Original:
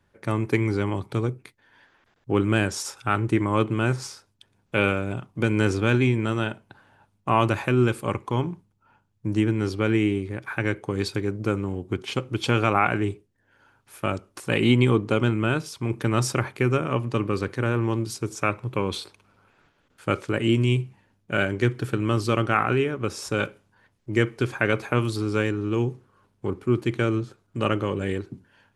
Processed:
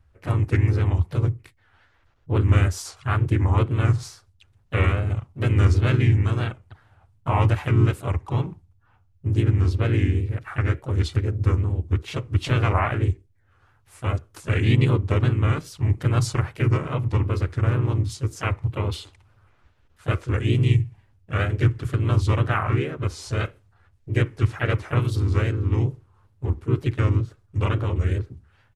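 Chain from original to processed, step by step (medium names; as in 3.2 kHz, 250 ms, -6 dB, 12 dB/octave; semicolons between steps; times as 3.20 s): wow and flutter 120 cents; resonant low shelf 130 Hz +13 dB, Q 1.5; harmony voices -3 st -2 dB, +3 st -8 dB; trim -5.5 dB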